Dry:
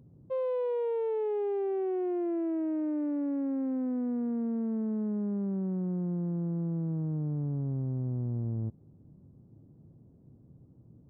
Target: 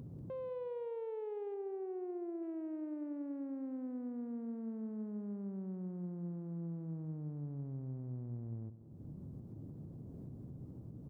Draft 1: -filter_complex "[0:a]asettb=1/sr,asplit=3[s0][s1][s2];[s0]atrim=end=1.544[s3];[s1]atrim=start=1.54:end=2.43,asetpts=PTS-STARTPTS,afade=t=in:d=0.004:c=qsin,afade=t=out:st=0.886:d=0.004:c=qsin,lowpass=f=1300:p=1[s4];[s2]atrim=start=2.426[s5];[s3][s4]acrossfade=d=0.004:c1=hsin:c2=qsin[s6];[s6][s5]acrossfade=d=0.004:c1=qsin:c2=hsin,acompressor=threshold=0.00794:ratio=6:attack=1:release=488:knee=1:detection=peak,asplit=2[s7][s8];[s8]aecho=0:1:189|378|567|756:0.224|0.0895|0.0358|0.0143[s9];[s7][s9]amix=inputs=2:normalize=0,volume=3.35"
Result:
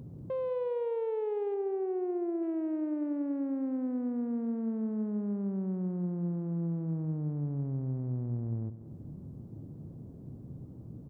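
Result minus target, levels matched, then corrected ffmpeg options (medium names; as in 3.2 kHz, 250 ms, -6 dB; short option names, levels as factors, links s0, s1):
compression: peak gain reduction -9 dB
-filter_complex "[0:a]asettb=1/sr,asplit=3[s0][s1][s2];[s0]atrim=end=1.544[s3];[s1]atrim=start=1.54:end=2.43,asetpts=PTS-STARTPTS,afade=t=in:d=0.004:c=qsin,afade=t=out:st=0.886:d=0.004:c=qsin,lowpass=f=1300:p=1[s4];[s2]atrim=start=2.426[s5];[s3][s4]acrossfade=d=0.004:c1=hsin:c2=qsin[s6];[s6][s5]acrossfade=d=0.004:c1=qsin:c2=hsin,acompressor=threshold=0.00224:ratio=6:attack=1:release=488:knee=1:detection=peak,asplit=2[s7][s8];[s8]aecho=0:1:189|378|567|756:0.224|0.0895|0.0358|0.0143[s9];[s7][s9]amix=inputs=2:normalize=0,volume=3.35"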